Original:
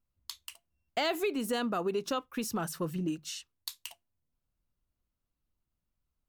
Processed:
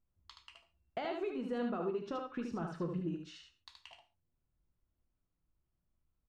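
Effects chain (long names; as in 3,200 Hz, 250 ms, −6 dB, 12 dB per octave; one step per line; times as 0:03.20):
downward compressor 2.5 to 1, threshold −38 dBFS, peak gain reduction 8.5 dB
head-to-tape spacing loss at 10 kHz 34 dB
on a send: single-tap delay 75 ms −5 dB
on the sum: reverb whose tail is shaped and stops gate 160 ms falling, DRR 7.5 dB
level +1 dB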